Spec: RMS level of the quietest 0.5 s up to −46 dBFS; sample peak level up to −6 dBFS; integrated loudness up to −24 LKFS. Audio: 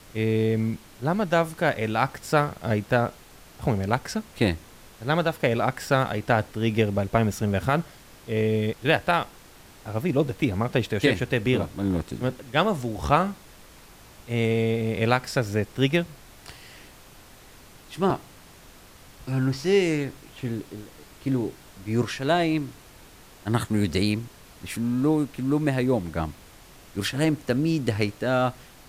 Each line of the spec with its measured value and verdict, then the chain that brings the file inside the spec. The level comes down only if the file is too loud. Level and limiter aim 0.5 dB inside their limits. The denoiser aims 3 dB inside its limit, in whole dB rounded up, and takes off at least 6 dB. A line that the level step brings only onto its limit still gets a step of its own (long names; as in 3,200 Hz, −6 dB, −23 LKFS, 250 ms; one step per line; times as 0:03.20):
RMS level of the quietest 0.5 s −49 dBFS: in spec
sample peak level −6.5 dBFS: in spec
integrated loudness −25.5 LKFS: in spec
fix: no processing needed